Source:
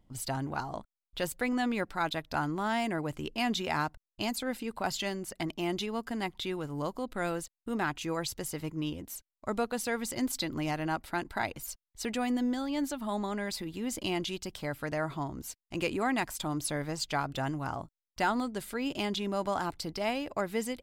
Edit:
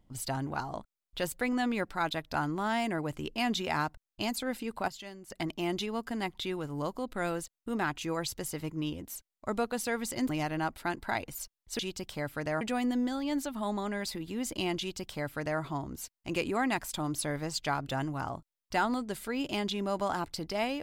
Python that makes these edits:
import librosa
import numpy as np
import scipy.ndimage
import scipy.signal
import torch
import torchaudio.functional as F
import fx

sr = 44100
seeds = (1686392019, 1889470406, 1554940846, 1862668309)

y = fx.edit(x, sr, fx.clip_gain(start_s=4.88, length_s=0.42, db=-11.0),
    fx.cut(start_s=10.29, length_s=0.28),
    fx.duplicate(start_s=14.25, length_s=0.82, to_s=12.07), tone=tone)